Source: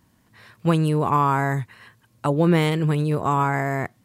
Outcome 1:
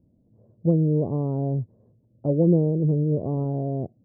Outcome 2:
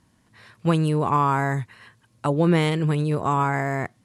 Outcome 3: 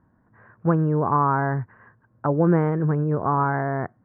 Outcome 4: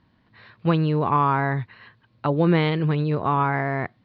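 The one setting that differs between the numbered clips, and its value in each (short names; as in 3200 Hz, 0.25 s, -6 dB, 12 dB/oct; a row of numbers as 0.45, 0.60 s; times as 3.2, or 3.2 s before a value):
elliptic low-pass, frequency: 590, 11000, 1600, 4300 Hz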